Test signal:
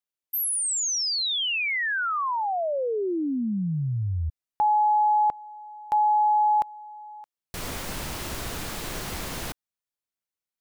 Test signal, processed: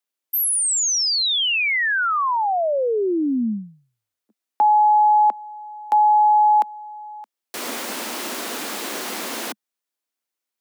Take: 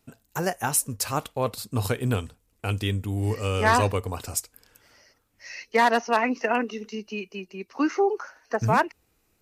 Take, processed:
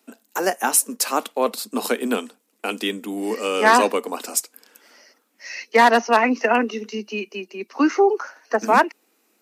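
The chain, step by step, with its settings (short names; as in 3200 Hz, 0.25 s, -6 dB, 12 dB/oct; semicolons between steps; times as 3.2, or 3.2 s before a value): steep high-pass 210 Hz 72 dB/oct; gain +6 dB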